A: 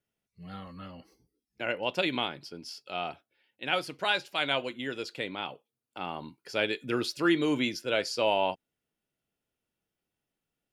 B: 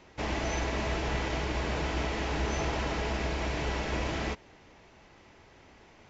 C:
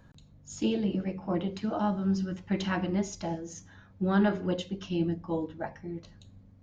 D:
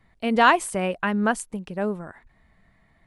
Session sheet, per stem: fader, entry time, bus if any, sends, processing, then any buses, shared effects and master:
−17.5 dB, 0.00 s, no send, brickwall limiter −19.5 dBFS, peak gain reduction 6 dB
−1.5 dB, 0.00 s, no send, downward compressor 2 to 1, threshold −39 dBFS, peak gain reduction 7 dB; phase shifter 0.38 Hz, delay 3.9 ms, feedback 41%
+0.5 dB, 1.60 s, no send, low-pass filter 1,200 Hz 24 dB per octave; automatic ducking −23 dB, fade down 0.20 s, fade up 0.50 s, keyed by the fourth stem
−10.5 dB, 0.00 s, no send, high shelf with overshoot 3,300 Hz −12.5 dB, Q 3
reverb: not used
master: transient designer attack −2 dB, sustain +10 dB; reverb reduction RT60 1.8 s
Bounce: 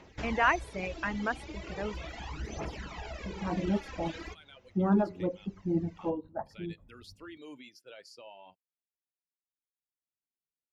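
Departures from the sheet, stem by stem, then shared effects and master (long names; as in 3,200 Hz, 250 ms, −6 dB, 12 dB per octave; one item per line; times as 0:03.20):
stem C: entry 1.60 s → 0.75 s
master: missing transient designer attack −2 dB, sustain +10 dB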